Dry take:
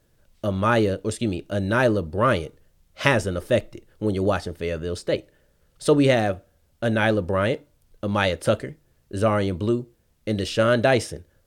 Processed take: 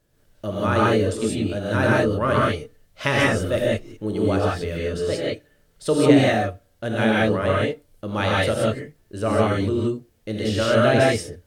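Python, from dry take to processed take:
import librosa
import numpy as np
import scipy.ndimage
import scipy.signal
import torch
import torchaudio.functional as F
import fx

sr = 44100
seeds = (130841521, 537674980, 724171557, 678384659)

y = fx.rev_gated(x, sr, seeds[0], gate_ms=200, shape='rising', drr_db=-5.0)
y = F.gain(torch.from_numpy(y), -4.0).numpy()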